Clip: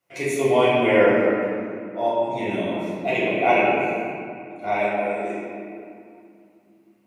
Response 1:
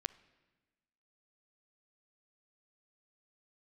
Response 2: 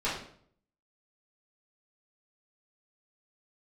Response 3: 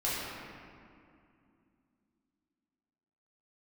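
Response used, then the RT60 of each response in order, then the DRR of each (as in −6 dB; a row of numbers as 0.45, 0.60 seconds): 3; 1.3, 0.60, 2.5 seconds; 15.5, −10.5, −10.0 decibels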